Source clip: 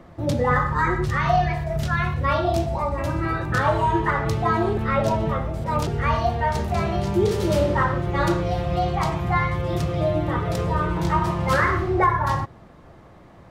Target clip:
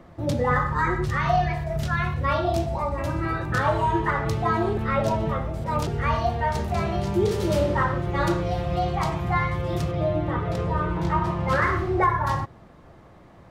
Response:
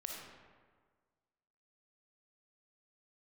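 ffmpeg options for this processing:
-filter_complex "[0:a]asettb=1/sr,asplit=3[s0][s1][s2];[s0]atrim=end=9.914[s3];[s1]atrim=start=9.91:end=11.62,asetpts=PTS-STARTPTS,afade=t=in:d=0.004:c=qsin,afade=t=out:st=1.706:d=0.004:c=qsin,highshelf=f=5400:g=-11.5[s4];[s2]atrim=start=11.616[s5];[s3][s4]acrossfade=d=0.004:c1=hsin:c2=qsin[s6];[s6][s5]acrossfade=d=0.004:c1=qsin:c2=hsin,volume=0.794"

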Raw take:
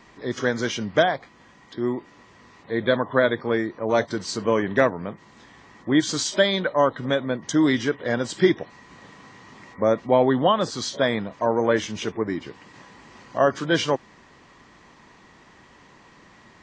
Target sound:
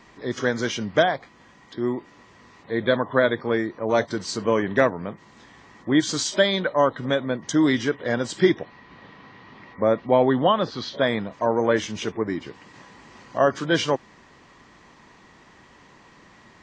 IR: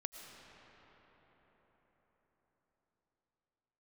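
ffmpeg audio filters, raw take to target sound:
-filter_complex "[0:a]asettb=1/sr,asplit=3[s0][s1][s2];[s0]atrim=end=8.614[s3];[s1]atrim=start=8.61:end=11.07,asetpts=PTS-STARTPTS,afade=t=in:d=0.004:c=qsin,afade=t=out:st=2.456:d=0.004:c=qsin,lowpass=f=4300:w=0.5412,lowpass=f=4300:w=1.3066[s4];[s2]atrim=start=11.066[s5];[s3][s4]acrossfade=d=0.004:c1=hsin:c2=qsin[s6];[s6][s5]acrossfade=d=0.004:c1=qsin:c2=hsin"

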